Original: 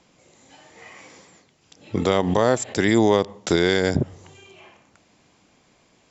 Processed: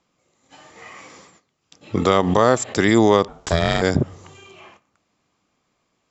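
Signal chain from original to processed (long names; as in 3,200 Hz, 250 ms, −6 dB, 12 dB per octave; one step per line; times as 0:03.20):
noise gate −51 dBFS, range −14 dB
parametric band 1,200 Hz +8.5 dB 0.26 octaves
0:03.28–0:03.82: ring modulation 250 Hz
level +2.5 dB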